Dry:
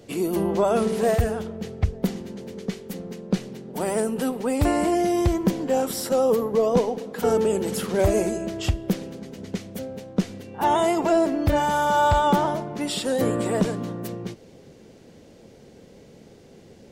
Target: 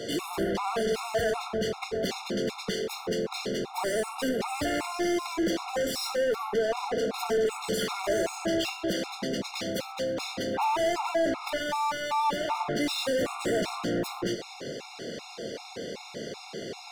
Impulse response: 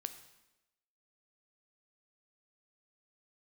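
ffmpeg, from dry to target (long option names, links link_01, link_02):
-filter_complex "[0:a]equalizer=frequency=4500:width=1.2:gain=6.5,acrossover=split=310[link_01][link_02];[link_01]alimiter=limit=-20.5dB:level=0:latency=1:release=346[link_03];[link_03][link_02]amix=inputs=2:normalize=0,acompressor=threshold=-28dB:ratio=3,asplit=2[link_04][link_05];[link_05]highpass=frequency=720:poles=1,volume=28dB,asoftclip=type=tanh:threshold=-17dB[link_06];[link_04][link_06]amix=inputs=2:normalize=0,lowpass=frequency=3600:poles=1,volume=-6dB[link_07];[1:a]atrim=start_sample=2205,atrim=end_sample=6174[link_08];[link_07][link_08]afir=irnorm=-1:irlink=0,afftfilt=real='re*gt(sin(2*PI*2.6*pts/sr)*(1-2*mod(floor(b*sr/1024/710),2)),0)':imag='im*gt(sin(2*PI*2.6*pts/sr)*(1-2*mod(floor(b*sr/1024/710),2)),0)':win_size=1024:overlap=0.75"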